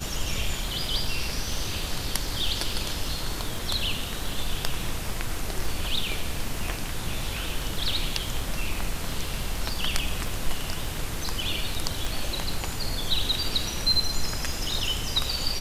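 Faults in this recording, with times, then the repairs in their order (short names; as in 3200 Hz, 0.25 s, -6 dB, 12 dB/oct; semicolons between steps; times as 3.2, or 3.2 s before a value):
crackle 21/s -30 dBFS
12.05 pop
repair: de-click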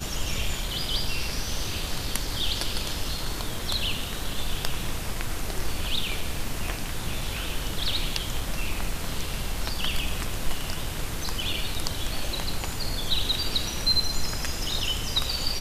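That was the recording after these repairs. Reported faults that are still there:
none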